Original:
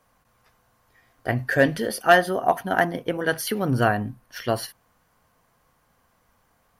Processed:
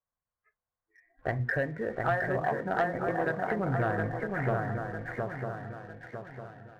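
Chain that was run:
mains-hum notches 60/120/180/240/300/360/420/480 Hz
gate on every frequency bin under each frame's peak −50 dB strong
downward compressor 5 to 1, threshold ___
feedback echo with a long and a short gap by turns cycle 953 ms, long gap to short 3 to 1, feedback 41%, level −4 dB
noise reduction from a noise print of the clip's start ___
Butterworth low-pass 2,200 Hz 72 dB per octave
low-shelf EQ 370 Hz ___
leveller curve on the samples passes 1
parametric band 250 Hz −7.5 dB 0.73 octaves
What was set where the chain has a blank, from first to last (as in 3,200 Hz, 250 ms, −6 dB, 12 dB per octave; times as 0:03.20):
−32 dBFS, 29 dB, +4.5 dB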